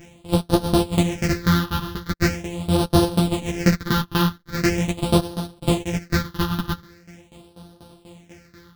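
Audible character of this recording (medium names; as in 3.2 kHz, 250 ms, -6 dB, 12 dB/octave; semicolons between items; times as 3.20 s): a buzz of ramps at a fixed pitch in blocks of 256 samples; phasing stages 6, 0.42 Hz, lowest notch 580–2100 Hz; tremolo saw down 4.1 Hz, depth 90%; a shimmering, thickened sound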